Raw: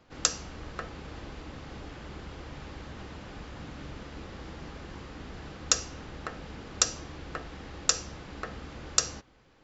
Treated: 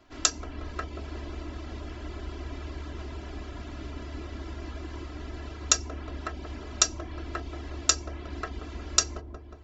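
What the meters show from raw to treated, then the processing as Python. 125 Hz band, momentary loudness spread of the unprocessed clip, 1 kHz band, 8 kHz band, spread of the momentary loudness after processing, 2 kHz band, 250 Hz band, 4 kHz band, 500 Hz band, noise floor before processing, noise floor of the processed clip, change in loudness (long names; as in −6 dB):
+5.5 dB, 16 LU, +2.5 dB, can't be measured, 14 LU, +1.5 dB, +3.5 dB, +2.0 dB, +2.0 dB, −60 dBFS, −43 dBFS, +2.5 dB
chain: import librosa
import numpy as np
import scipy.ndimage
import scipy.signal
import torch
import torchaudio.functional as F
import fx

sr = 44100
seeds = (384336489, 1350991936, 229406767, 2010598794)

y = fx.dereverb_blind(x, sr, rt60_s=0.53)
y = y + 0.84 * np.pad(y, (int(3.0 * sr / 1000.0), 0))[:len(y)]
y = fx.echo_wet_lowpass(y, sr, ms=181, feedback_pct=60, hz=670.0, wet_db=-3.0)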